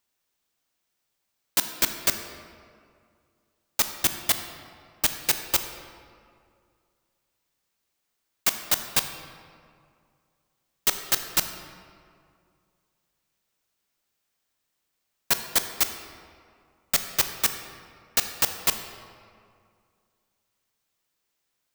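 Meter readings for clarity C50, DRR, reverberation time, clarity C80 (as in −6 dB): 8.0 dB, 7.0 dB, 2.3 s, 9.0 dB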